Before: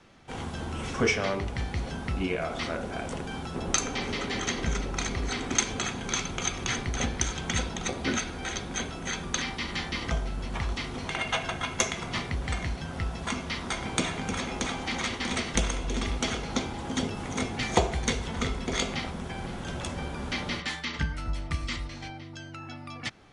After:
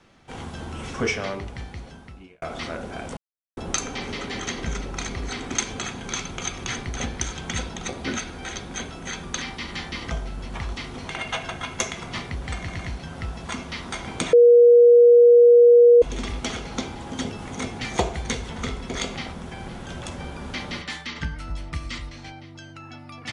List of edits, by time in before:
1.16–2.42 fade out
3.17–3.57 mute
12.57 stutter 0.11 s, 3 plays
14.11–15.8 bleep 478 Hz -8.5 dBFS

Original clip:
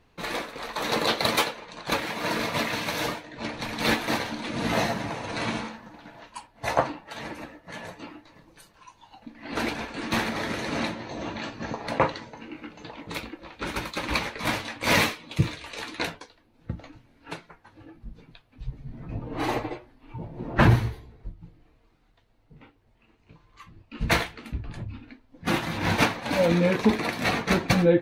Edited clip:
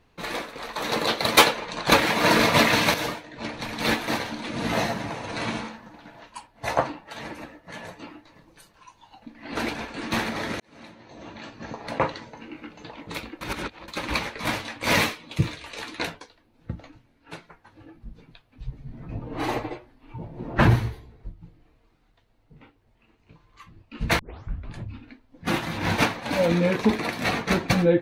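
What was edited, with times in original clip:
1.37–2.94 gain +9 dB
10.6–12.29 fade in
13.41–13.88 reverse
16.73–17.33 fade out, to -7 dB
24.19 tape start 0.52 s

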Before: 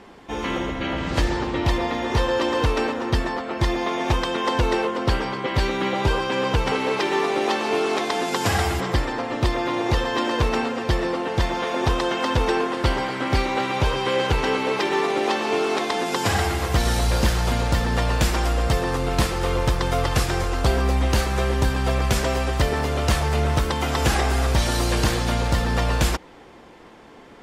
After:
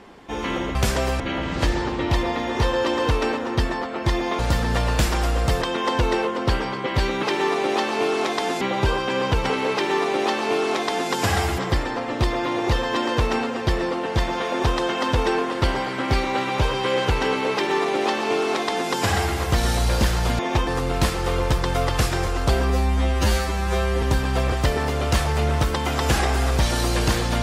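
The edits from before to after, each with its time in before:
3.94–4.22 swap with 17.61–18.84
6.95–8.33 copy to 5.83
20.87–21.53 stretch 2×
22.03–22.48 move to 0.75

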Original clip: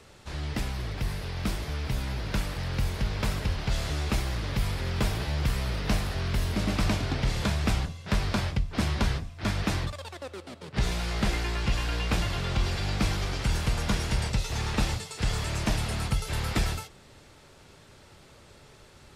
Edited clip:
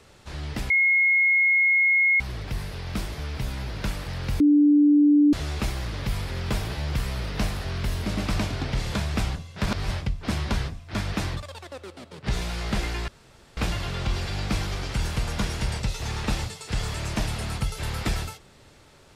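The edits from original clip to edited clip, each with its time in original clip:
0.7 add tone 2160 Hz -16.5 dBFS 1.50 s
2.9–3.83 bleep 293 Hz -13.5 dBFS
8.16–8.41 reverse
11.58–12.07 room tone

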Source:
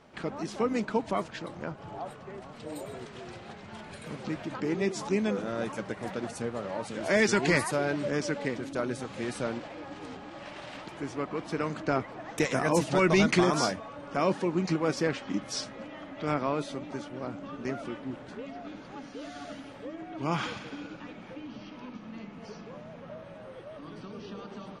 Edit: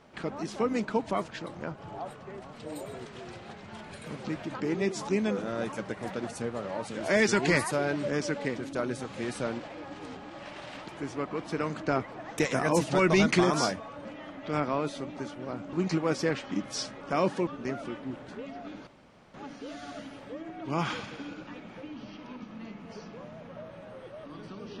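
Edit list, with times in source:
14.05–14.51 swap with 15.79–17.47
18.87 insert room tone 0.47 s

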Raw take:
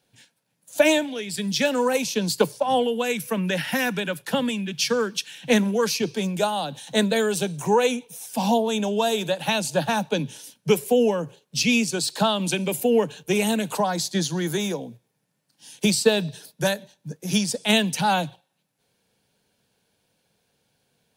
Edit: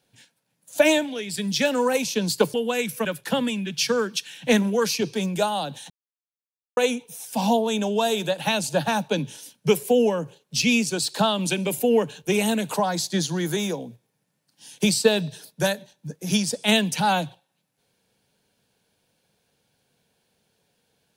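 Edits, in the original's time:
2.54–2.85 cut
3.36–4.06 cut
6.91–7.78 mute

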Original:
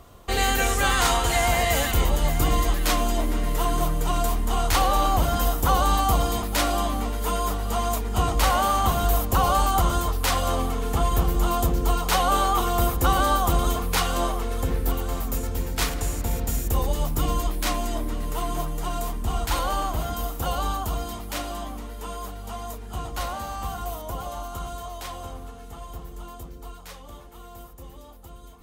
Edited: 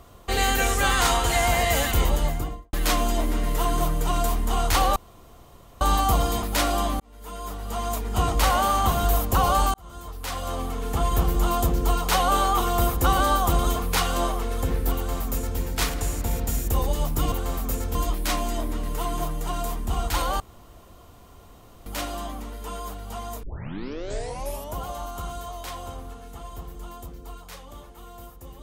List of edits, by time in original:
2.1–2.73 studio fade out
4.96–5.81 room tone
7–8.24 fade in
9.74–11.22 fade in
14.95–15.58 copy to 17.32
19.77–21.23 room tone
22.8 tape start 1.31 s

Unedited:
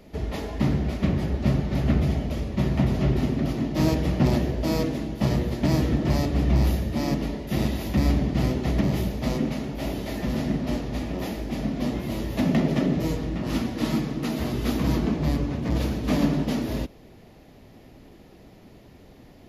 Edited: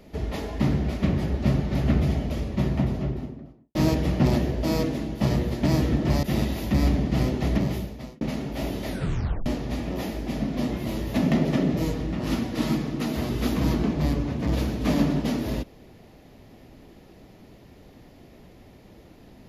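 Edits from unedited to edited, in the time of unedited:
2.43–3.75 studio fade out
6.23–7.46 cut
8.76–9.44 fade out
10.11 tape stop 0.58 s

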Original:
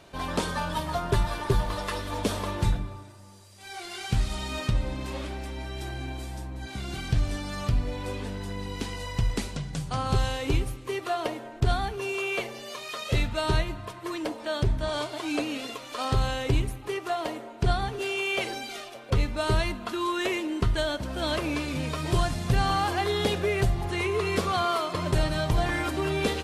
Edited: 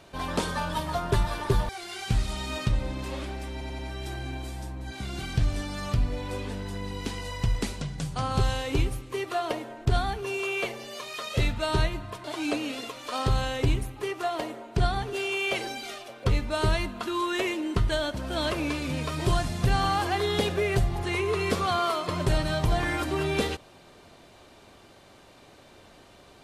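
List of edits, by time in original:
1.69–3.71 cut
5.54 stutter 0.09 s, 4 plays
13.99–15.1 cut

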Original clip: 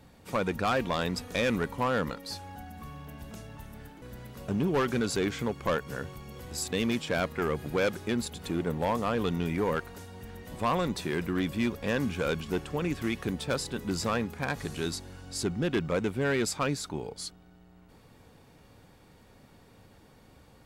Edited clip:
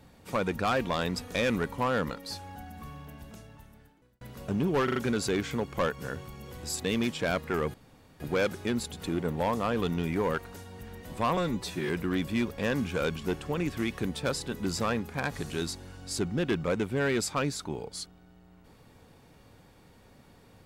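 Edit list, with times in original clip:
2.89–4.21 fade out
4.84 stutter 0.04 s, 4 plays
7.62 insert room tone 0.46 s
10.79–11.14 stretch 1.5×

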